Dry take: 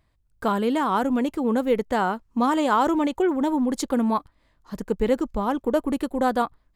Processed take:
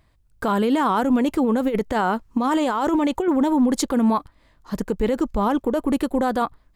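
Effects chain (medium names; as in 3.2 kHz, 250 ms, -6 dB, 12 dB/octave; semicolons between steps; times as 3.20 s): 1.19–3.28 s: compressor with a negative ratio -23 dBFS, ratio -0.5; peak limiter -18.5 dBFS, peak gain reduction 9.5 dB; trim +6.5 dB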